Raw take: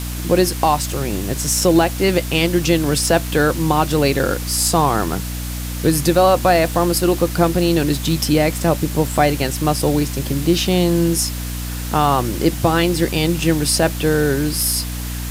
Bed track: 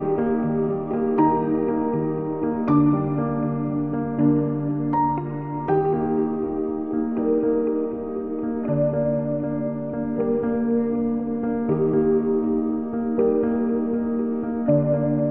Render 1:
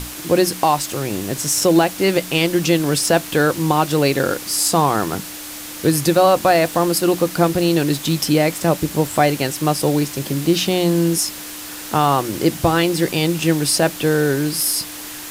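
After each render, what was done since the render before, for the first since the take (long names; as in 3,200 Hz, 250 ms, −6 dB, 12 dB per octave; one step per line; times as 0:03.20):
mains-hum notches 60/120/180/240 Hz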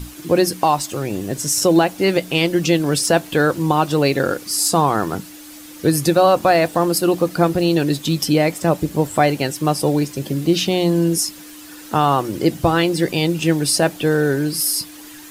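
broadband denoise 10 dB, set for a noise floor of −32 dBFS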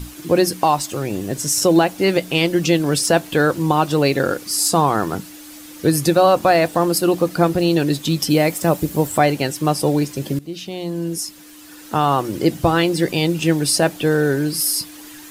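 0:08.30–0:09.18: high-shelf EQ 10,000 Hz +10.5 dB
0:10.39–0:12.32: fade in, from −17 dB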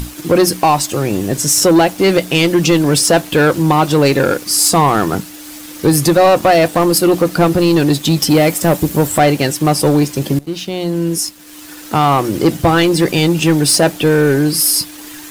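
leveller curve on the samples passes 2
upward compression, threshold −26 dBFS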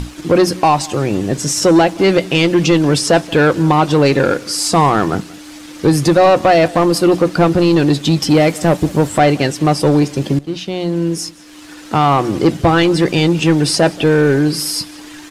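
high-frequency loss of the air 64 metres
single-tap delay 180 ms −22.5 dB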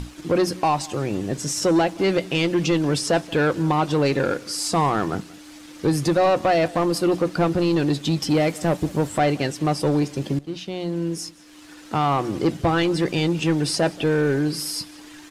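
level −8.5 dB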